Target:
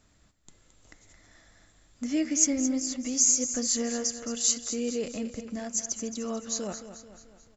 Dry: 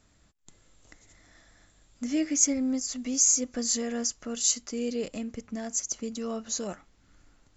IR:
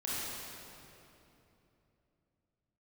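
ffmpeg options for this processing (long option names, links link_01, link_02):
-af "aecho=1:1:219|438|657|876|1095:0.282|0.138|0.0677|0.0332|0.0162"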